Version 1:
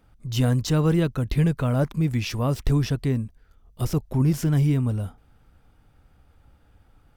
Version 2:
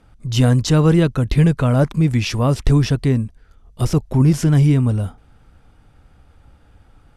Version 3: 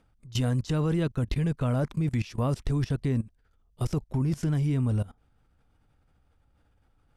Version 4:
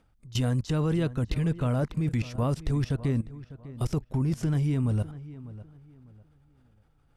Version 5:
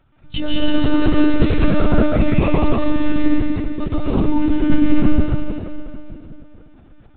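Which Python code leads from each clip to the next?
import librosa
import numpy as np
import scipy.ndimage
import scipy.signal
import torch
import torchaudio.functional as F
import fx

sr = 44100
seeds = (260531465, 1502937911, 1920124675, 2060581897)

y1 = scipy.signal.sosfilt(scipy.signal.butter(4, 11000.0, 'lowpass', fs=sr, output='sos'), x)
y1 = F.gain(torch.from_numpy(y1), 7.0).numpy()
y2 = fx.level_steps(y1, sr, step_db=20)
y2 = F.gain(torch.from_numpy(y2), -5.0).numpy()
y3 = fx.echo_filtered(y2, sr, ms=600, feedback_pct=29, hz=2500.0, wet_db=-16)
y4 = fx.rev_plate(y3, sr, seeds[0], rt60_s=2.4, hf_ratio=1.0, predelay_ms=110, drr_db=-8.5)
y4 = fx.lpc_monotone(y4, sr, seeds[1], pitch_hz=300.0, order=16)
y4 = F.gain(torch.from_numpy(y4), 7.0).numpy()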